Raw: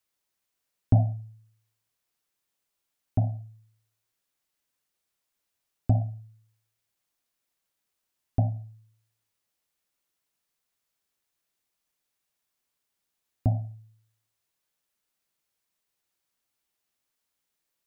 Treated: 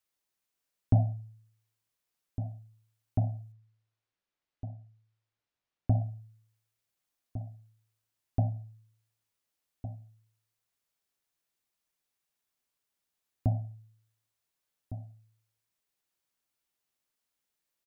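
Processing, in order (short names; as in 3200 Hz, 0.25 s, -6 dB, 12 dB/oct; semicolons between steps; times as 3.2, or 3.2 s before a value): 3.52–5.99 air absorption 150 m; outdoor echo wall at 250 m, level -12 dB; gain -3.5 dB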